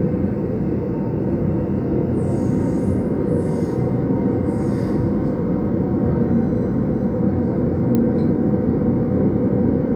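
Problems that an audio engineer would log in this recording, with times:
0:07.95: click −9 dBFS

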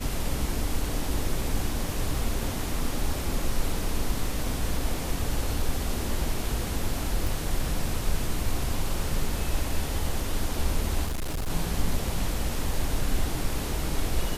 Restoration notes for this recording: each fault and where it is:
0:07.27: click
0:11.06–0:11.50: clipping −26 dBFS

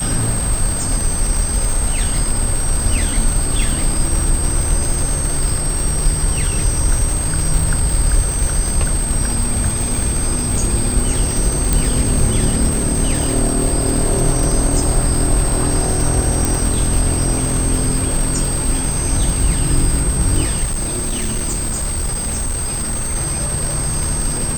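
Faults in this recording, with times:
surface crackle 360 per second −19 dBFS
whistle 8,300 Hz −21 dBFS
0:11.73: click
0:16.45: click
0:20.63–0:23.16: clipping −16 dBFS

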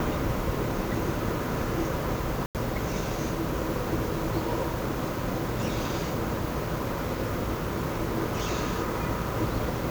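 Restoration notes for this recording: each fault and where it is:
0:02.46–0:02.55: drop-out 88 ms

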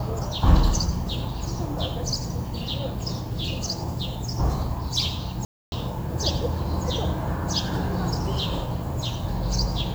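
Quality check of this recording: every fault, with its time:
0:05.45–0:05.72: drop-out 271 ms

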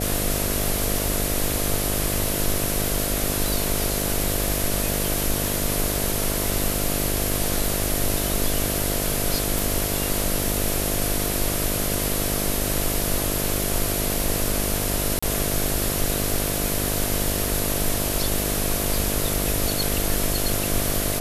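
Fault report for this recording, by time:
mains buzz 50 Hz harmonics 14 −28 dBFS
0:09.59: click
0:15.19–0:15.22: drop-out 35 ms

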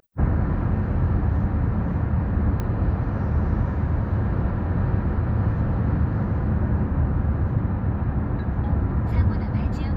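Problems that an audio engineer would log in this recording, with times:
0:02.60: click −16 dBFS

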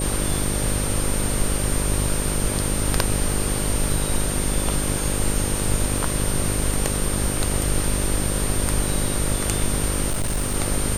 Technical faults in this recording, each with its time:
mains buzz 50 Hz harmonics 12 −26 dBFS
surface crackle 16 per second −27 dBFS
whistle 8,900 Hz −28 dBFS
0:10.09–0:10.56: clipping −19 dBFS

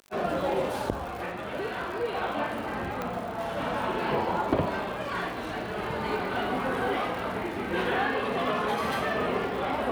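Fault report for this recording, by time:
surface crackle 130 per second −37 dBFS
0:03.02: click −18 dBFS

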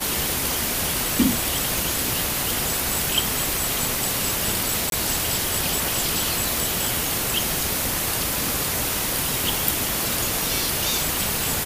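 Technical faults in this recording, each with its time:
0:01.78: click
0:04.90–0:04.92: drop-out 22 ms

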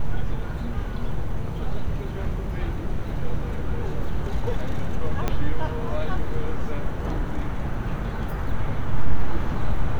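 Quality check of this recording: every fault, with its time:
0:05.28: click −10 dBFS

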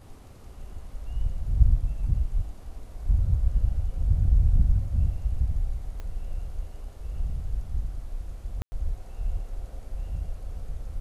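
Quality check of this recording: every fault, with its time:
0:06.00: click −25 dBFS
0:08.62–0:08.72: drop-out 100 ms

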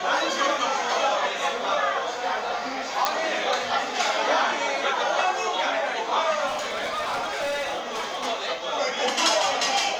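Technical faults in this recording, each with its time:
0:03.05: click −7 dBFS
0:06.46–0:08.27: clipping −24.5 dBFS

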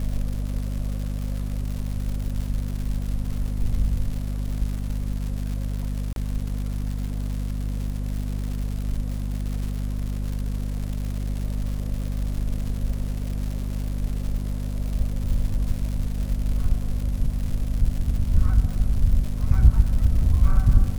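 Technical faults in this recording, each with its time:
surface crackle 200 per second −30 dBFS
mains hum 50 Hz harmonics 5 −27 dBFS
0:06.13–0:06.16: drop-out 32 ms

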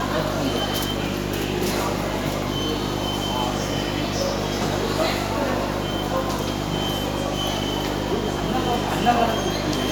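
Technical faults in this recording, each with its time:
mains hum 50 Hz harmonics 7 −28 dBFS

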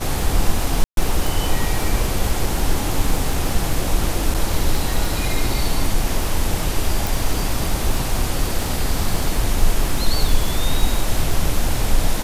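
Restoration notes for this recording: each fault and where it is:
surface crackle 30 per second −21 dBFS
0:00.84–0:00.97: drop-out 132 ms
0:04.34–0:04.35: drop-out 6.6 ms
0:07.07: click

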